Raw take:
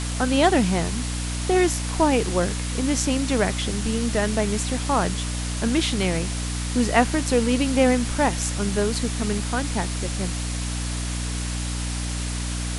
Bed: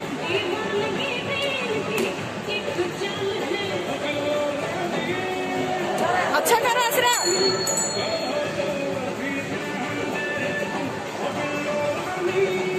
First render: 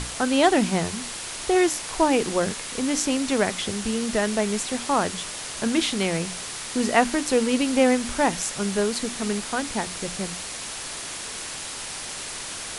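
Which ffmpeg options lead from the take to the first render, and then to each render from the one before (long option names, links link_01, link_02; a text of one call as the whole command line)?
ffmpeg -i in.wav -af "bandreject=frequency=60:width_type=h:width=6,bandreject=frequency=120:width_type=h:width=6,bandreject=frequency=180:width_type=h:width=6,bandreject=frequency=240:width_type=h:width=6,bandreject=frequency=300:width_type=h:width=6" out.wav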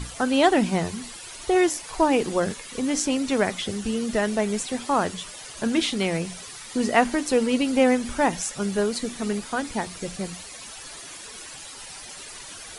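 ffmpeg -i in.wav -af "afftdn=noise_reduction=12:noise_floor=-35" out.wav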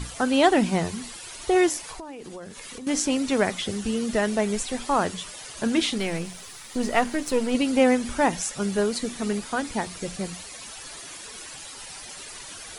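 ffmpeg -i in.wav -filter_complex "[0:a]asettb=1/sr,asplit=3[link_01][link_02][link_03];[link_01]atrim=end=1.914[link_04];[link_02]atrim=start=1.91:end=2.87,asetpts=PTS-STARTPTS,afade=type=in:duration=0.004:curve=qsin,afade=type=out:start_time=0.956:duration=0.004:curve=qsin,acompressor=threshold=-35dB:ratio=12:attack=3.2:release=140:knee=1:detection=peak[link_05];[link_03]atrim=start=2.866[link_06];[link_04][link_05]acrossfade=duration=0.004:curve1=hsin:curve2=qsin[link_07];[link_07][link_06]acrossfade=duration=0.004:curve1=qsin:curve2=hsin,asplit=3[link_08][link_09][link_10];[link_08]afade=type=out:start_time=4.54:duration=0.02[link_11];[link_09]asubboost=boost=5:cutoff=64,afade=type=in:start_time=4.54:duration=0.02,afade=type=out:start_time=4.98:duration=0.02[link_12];[link_10]afade=type=in:start_time=4.98:duration=0.02[link_13];[link_11][link_12][link_13]amix=inputs=3:normalize=0,asettb=1/sr,asplit=3[link_14][link_15][link_16];[link_14]atrim=end=5.984[link_17];[link_15]atrim=start=5.98:end=7.55,asetpts=PTS-STARTPTS,afade=type=in:duration=0.004:curve=qsin,afade=type=out:start_time=1.566:duration=0.004:curve=qsin,aeval=exprs='if(lt(val(0),0),0.447*val(0),val(0))':channel_layout=same[link_18];[link_16]atrim=start=7.546[link_19];[link_17][link_18]acrossfade=duration=0.004:curve1=hsin:curve2=qsin[link_20];[link_20][link_19]acrossfade=duration=0.004:curve1=qsin:curve2=hsin" out.wav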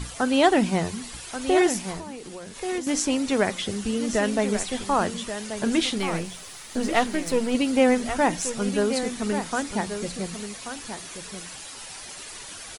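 ffmpeg -i in.wav -af "aecho=1:1:1133:0.335" out.wav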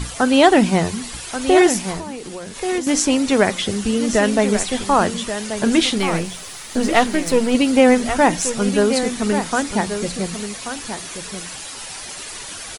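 ffmpeg -i in.wav -af "volume=7dB,alimiter=limit=-1dB:level=0:latency=1" out.wav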